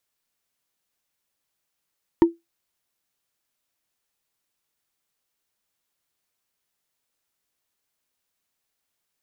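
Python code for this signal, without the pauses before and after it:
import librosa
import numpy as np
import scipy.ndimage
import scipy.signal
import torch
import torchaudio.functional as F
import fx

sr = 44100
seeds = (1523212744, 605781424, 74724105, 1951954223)

y = fx.strike_wood(sr, length_s=0.45, level_db=-6.5, body='bar', hz=336.0, decay_s=0.18, tilt_db=10, modes=5)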